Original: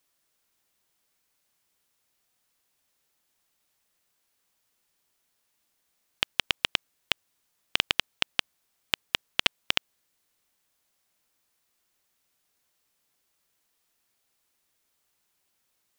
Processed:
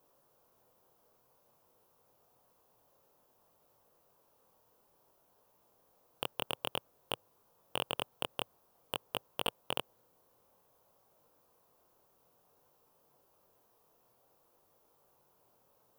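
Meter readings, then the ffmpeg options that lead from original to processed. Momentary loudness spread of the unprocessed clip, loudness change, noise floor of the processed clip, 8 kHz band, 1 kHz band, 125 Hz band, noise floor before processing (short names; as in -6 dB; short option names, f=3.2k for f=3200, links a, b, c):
6 LU, -10.5 dB, -71 dBFS, -7.5 dB, -2.5 dB, -3.0 dB, -75 dBFS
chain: -af "flanger=delay=19:depth=6.2:speed=0.54,asoftclip=type=hard:threshold=-23.5dB,equalizer=f=125:t=o:w=1:g=7,equalizer=f=500:t=o:w=1:g=11,equalizer=f=1k:t=o:w=1:g=8,equalizer=f=2k:t=o:w=1:g=-12,equalizer=f=4k:t=o:w=1:g=-7,equalizer=f=8k:t=o:w=1:g=-10,volume=9dB"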